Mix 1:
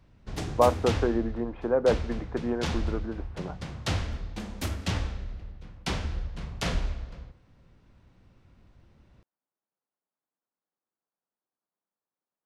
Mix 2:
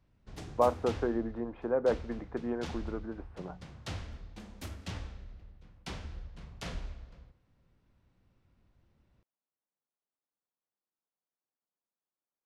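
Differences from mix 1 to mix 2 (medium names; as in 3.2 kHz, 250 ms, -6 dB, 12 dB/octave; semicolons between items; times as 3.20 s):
speech -5.0 dB; background -11.0 dB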